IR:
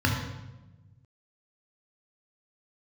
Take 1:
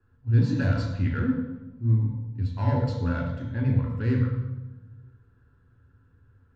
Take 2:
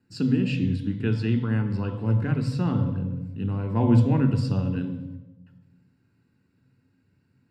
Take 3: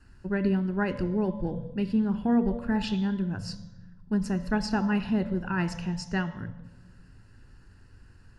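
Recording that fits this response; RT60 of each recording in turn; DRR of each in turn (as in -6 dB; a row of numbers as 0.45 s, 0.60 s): 1; 1.1 s, 1.1 s, 1.1 s; -0.5 dB, 6.5 dB, 11.0 dB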